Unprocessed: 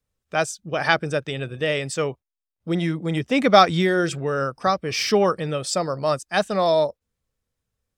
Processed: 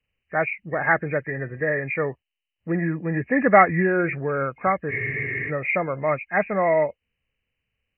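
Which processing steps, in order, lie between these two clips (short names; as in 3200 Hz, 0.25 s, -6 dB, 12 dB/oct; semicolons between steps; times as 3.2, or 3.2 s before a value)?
nonlinear frequency compression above 1600 Hz 4:1; spectral freeze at 4.92, 0.57 s; gain -1 dB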